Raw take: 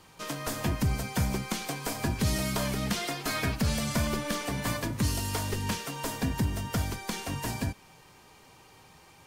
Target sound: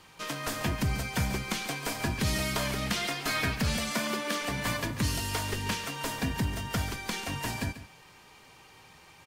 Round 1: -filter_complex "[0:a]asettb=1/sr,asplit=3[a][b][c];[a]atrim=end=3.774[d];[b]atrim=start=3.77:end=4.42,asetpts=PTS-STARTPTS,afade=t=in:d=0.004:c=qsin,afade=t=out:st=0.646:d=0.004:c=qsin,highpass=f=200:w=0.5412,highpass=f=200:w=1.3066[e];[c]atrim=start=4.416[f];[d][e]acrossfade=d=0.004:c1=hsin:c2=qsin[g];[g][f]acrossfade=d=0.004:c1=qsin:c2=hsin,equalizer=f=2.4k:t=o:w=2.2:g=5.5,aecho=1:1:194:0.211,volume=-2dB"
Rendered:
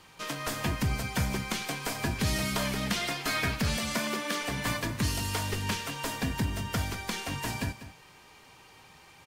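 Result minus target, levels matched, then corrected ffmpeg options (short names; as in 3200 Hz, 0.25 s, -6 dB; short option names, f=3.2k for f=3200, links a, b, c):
echo 54 ms late
-filter_complex "[0:a]asettb=1/sr,asplit=3[a][b][c];[a]atrim=end=3.774[d];[b]atrim=start=3.77:end=4.42,asetpts=PTS-STARTPTS,afade=t=in:d=0.004:c=qsin,afade=t=out:st=0.646:d=0.004:c=qsin,highpass=f=200:w=0.5412,highpass=f=200:w=1.3066[e];[c]atrim=start=4.416[f];[d][e]acrossfade=d=0.004:c1=hsin:c2=qsin[g];[g][f]acrossfade=d=0.004:c1=qsin:c2=hsin,equalizer=f=2.4k:t=o:w=2.2:g=5.5,aecho=1:1:140:0.211,volume=-2dB"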